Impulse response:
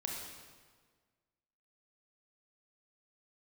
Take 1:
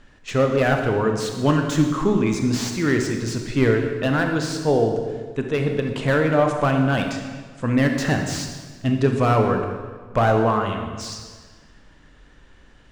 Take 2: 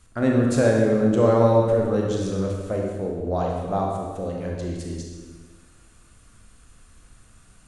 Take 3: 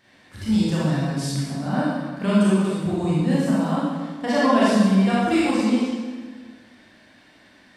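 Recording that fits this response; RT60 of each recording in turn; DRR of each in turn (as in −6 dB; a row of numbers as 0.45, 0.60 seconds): 2; 1.6, 1.6, 1.6 seconds; 3.5, −1.0, −9.0 decibels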